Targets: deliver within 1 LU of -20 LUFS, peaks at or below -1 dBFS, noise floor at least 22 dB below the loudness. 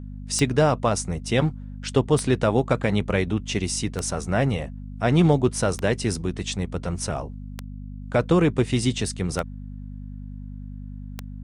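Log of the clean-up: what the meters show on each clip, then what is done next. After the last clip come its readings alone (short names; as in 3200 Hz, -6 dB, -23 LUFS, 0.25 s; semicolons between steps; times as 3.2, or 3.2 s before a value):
clicks 7; hum 50 Hz; harmonics up to 250 Hz; hum level -33 dBFS; loudness -23.5 LUFS; peak -6.5 dBFS; loudness target -20.0 LUFS
-> de-click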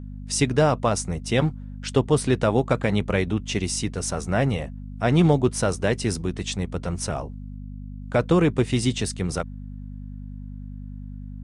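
clicks 0; hum 50 Hz; harmonics up to 250 Hz; hum level -33 dBFS
-> de-hum 50 Hz, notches 5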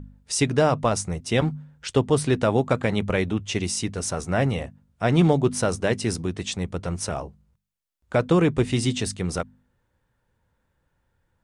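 hum none; loudness -24.0 LUFS; peak -6.5 dBFS; loudness target -20.0 LUFS
-> gain +4 dB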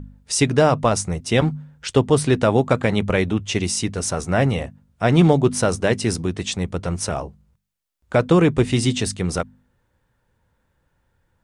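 loudness -20.0 LUFS; peak -2.5 dBFS; noise floor -69 dBFS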